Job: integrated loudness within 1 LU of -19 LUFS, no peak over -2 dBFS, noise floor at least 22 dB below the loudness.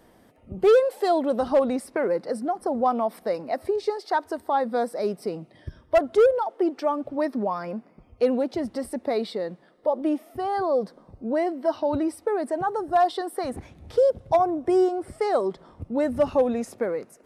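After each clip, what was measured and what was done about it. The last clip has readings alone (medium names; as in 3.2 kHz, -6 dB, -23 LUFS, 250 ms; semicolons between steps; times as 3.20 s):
clipped samples 0.4%; clipping level -12.5 dBFS; loudness -25.0 LUFS; peak level -12.5 dBFS; loudness target -19.0 LUFS
-> clip repair -12.5 dBFS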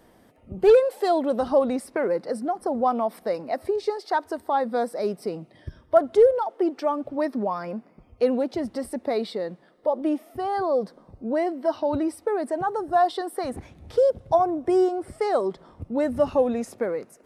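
clipped samples 0.0%; loudness -24.5 LUFS; peak level -6.5 dBFS; loudness target -19.0 LUFS
-> trim +5.5 dB; peak limiter -2 dBFS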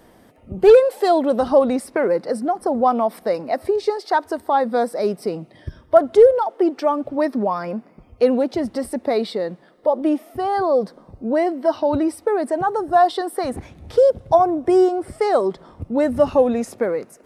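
loudness -19.0 LUFS; peak level -2.0 dBFS; noise floor -51 dBFS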